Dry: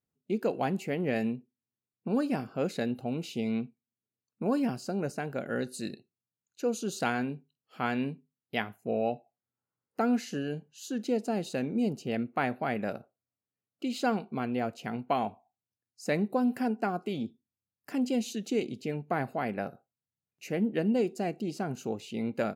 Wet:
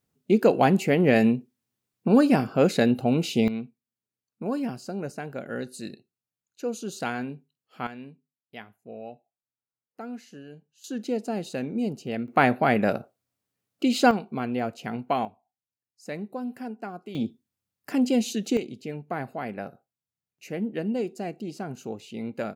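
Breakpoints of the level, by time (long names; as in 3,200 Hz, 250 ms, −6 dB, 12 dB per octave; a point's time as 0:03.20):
+10.5 dB
from 0:03.48 −0.5 dB
from 0:07.87 −10.5 dB
from 0:10.84 +1 dB
from 0:12.28 +10 dB
from 0:14.11 +3 dB
from 0:15.25 −6 dB
from 0:17.15 +6.5 dB
from 0:18.57 −1 dB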